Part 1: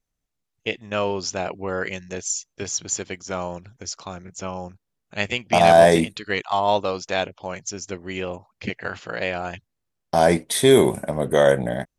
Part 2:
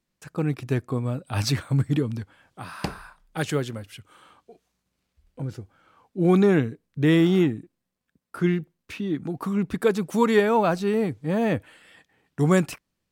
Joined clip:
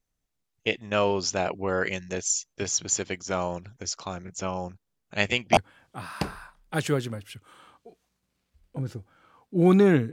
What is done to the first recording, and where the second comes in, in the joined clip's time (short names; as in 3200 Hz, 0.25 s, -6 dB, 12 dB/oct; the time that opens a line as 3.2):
part 1
5.57 switch to part 2 from 2.2 s